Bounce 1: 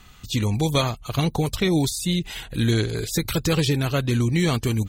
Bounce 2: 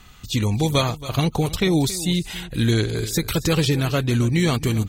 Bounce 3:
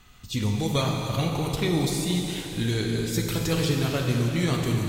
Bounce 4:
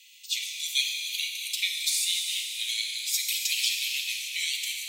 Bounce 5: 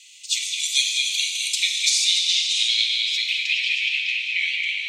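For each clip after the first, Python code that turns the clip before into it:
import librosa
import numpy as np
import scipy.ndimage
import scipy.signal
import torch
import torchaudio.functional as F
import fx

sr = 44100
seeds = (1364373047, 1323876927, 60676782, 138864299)

y1 = x + 10.0 ** (-16.0 / 20.0) * np.pad(x, (int(275 * sr / 1000.0), 0))[:len(x)]
y1 = F.gain(torch.from_numpy(y1), 1.5).numpy()
y2 = fx.rev_plate(y1, sr, seeds[0], rt60_s=3.6, hf_ratio=0.9, predelay_ms=0, drr_db=0.5)
y2 = F.gain(torch.from_numpy(y2), -7.0).numpy()
y3 = scipy.signal.sosfilt(scipy.signal.butter(12, 2200.0, 'highpass', fs=sr, output='sos'), y2)
y3 = F.gain(torch.from_numpy(y3), 6.5).numpy()
y4 = fx.filter_sweep_lowpass(y3, sr, from_hz=7900.0, to_hz=2300.0, start_s=1.54, end_s=3.61, q=2.0)
y4 = fx.echo_stepped(y4, sr, ms=210, hz=2800.0, octaves=0.7, feedback_pct=70, wet_db=-3.0)
y4 = F.gain(torch.from_numpy(y4), 4.0).numpy()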